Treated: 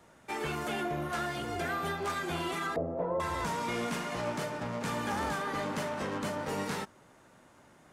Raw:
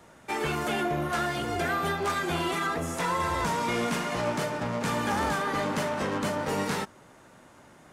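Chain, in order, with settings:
0:02.76–0:03.20: low-pass with resonance 590 Hz, resonance Q 3.7
level −5.5 dB

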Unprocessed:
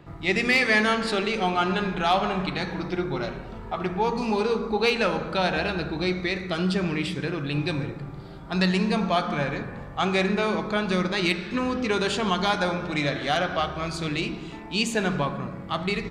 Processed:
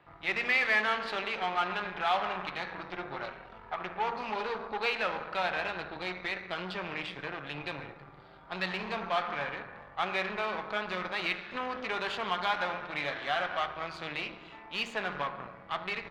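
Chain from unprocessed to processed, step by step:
harmonic generator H 8 −19 dB, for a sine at −11.5 dBFS
three-way crossover with the lows and the highs turned down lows −15 dB, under 580 Hz, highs −22 dB, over 3,800 Hz
level −4.5 dB

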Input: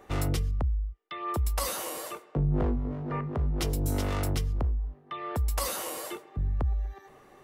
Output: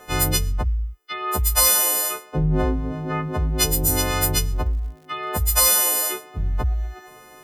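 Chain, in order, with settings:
every partial snapped to a pitch grid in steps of 3 semitones
0:03.80–0:06.23: surface crackle 87 per second −48 dBFS
level +6.5 dB

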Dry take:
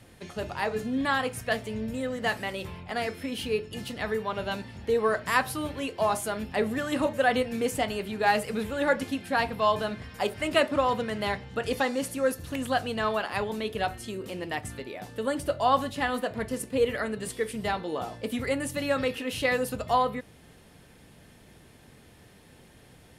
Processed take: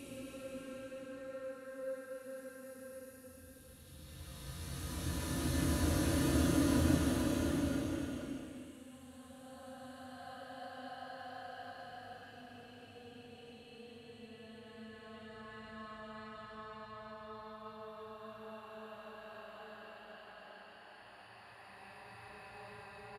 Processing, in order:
gate with flip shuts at −26 dBFS, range −32 dB
extreme stretch with random phases 19×, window 0.25 s, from 0:12.17
double-tracking delay 36 ms −6.5 dB
level +9 dB

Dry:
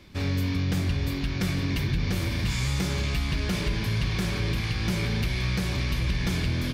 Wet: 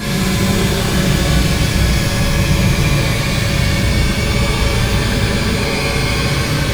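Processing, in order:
extreme stretch with random phases 41×, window 0.05 s, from 0:04.22
steady tone 560 Hz −42 dBFS
reverb with rising layers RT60 1 s, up +12 semitones, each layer −8 dB, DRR −9 dB
level +3 dB

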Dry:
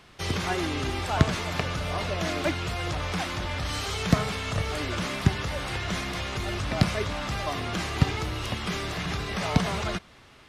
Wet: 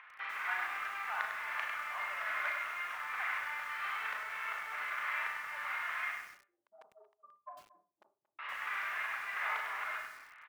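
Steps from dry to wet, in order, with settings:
transistor ladder low-pass 2,400 Hz, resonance 45%
upward compression, threshold −56 dBFS
spectral tilt −4 dB per octave
0:06.11–0:08.39: gate on every frequency bin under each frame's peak −10 dB strong
downward compressor 3 to 1, threshold −29 dBFS, peak gain reduction 14 dB
soft clipping −21.5 dBFS, distortion −19 dB
four-comb reverb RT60 0.31 s, combs from 26 ms, DRR 2.5 dB
hard clipping −23 dBFS, distortion −31 dB
high-pass filter 1,100 Hz 24 dB per octave
far-end echo of a speakerphone 230 ms, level −17 dB
feedback echo at a low word length 100 ms, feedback 35%, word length 10 bits, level −5.5 dB
level +7.5 dB

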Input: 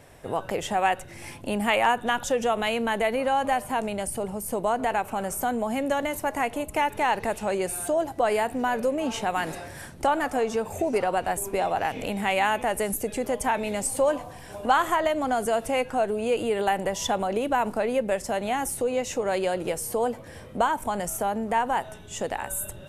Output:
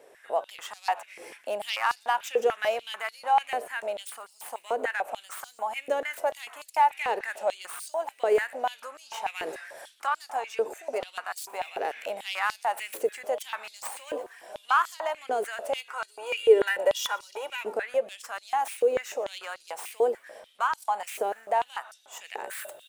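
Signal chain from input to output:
stylus tracing distortion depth 0.1 ms
0:15.92–0:17.61: comb filter 2.1 ms, depth 89%
echo with shifted repeats 119 ms, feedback 60%, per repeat −83 Hz, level −21 dB
high-pass on a step sequencer 6.8 Hz 440–4,700 Hz
level −7 dB

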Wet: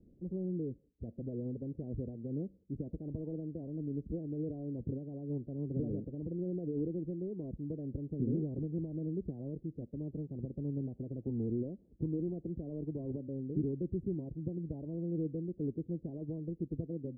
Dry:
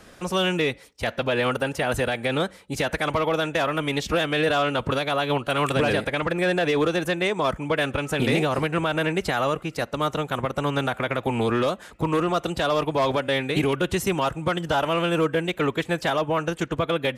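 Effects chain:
inverse Chebyshev low-pass filter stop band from 1,200 Hz, stop band 60 dB
level −8.5 dB

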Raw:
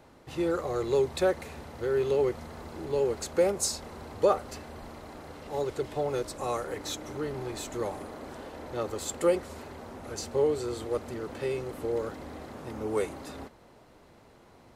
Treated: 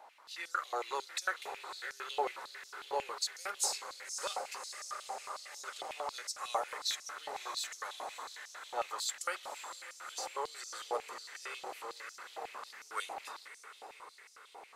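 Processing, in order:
feedback delay with all-pass diffusion 579 ms, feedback 67%, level −10.5 dB
high-pass on a step sequencer 11 Hz 800–5,600 Hz
level −4 dB

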